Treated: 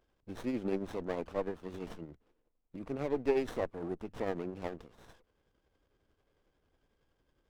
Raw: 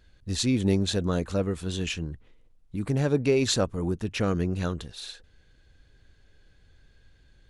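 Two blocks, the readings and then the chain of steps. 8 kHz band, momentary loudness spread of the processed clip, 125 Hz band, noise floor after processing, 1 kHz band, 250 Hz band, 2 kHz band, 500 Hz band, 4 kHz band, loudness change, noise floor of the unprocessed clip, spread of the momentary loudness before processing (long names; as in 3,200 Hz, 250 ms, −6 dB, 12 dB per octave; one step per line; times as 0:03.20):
below −25 dB, 17 LU, −19.5 dB, −79 dBFS, −5.0 dB, −11.0 dB, −11.0 dB, −6.5 dB, −23.0 dB, −9.5 dB, −60 dBFS, 15 LU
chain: three-way crossover with the lows and the highs turned down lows −15 dB, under 250 Hz, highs −14 dB, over 2,800 Hz
shaped tremolo triangle 11 Hz, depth 50%
windowed peak hold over 17 samples
level −3 dB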